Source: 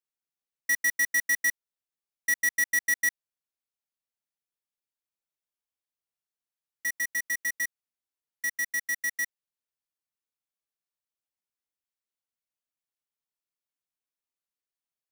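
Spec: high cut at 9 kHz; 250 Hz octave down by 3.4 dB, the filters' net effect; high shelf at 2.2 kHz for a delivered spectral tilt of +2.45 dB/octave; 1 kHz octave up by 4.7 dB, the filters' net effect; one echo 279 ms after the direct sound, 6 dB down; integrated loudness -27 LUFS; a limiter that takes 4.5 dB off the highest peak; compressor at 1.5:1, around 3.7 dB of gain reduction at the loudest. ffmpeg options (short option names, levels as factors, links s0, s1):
-af "lowpass=9000,equalizer=f=250:t=o:g=-4.5,equalizer=f=1000:t=o:g=4.5,highshelf=f=2200:g=8.5,acompressor=threshold=0.0447:ratio=1.5,alimiter=limit=0.112:level=0:latency=1,aecho=1:1:279:0.501,volume=1.19"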